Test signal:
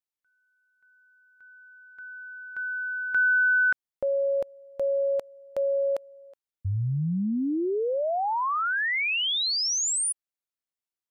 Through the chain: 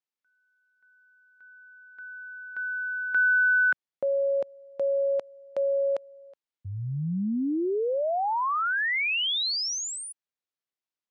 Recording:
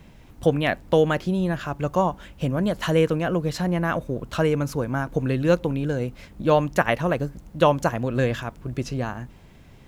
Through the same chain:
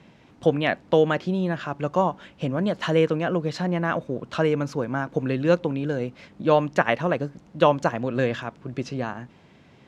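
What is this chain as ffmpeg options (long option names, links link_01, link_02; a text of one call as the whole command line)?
ffmpeg -i in.wav -af "highpass=150,lowpass=5300" out.wav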